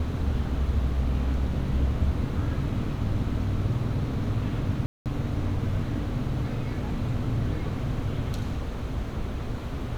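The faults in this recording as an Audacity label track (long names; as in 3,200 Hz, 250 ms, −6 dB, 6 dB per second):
4.860000	5.060000	drop-out 198 ms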